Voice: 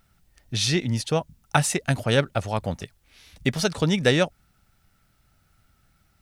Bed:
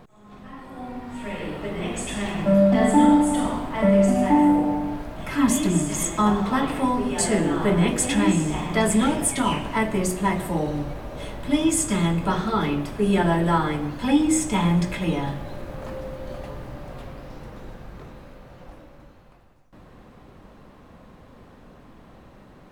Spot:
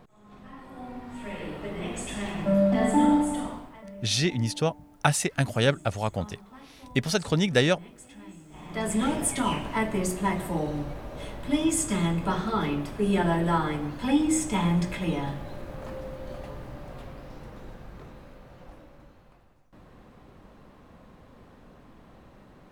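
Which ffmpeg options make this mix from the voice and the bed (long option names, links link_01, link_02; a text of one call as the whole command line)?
ffmpeg -i stem1.wav -i stem2.wav -filter_complex "[0:a]adelay=3500,volume=-2dB[link_01];[1:a]volume=17.5dB,afade=type=out:start_time=3.18:duration=0.66:silence=0.0841395,afade=type=in:start_time=8.49:duration=0.66:silence=0.0749894[link_02];[link_01][link_02]amix=inputs=2:normalize=0" out.wav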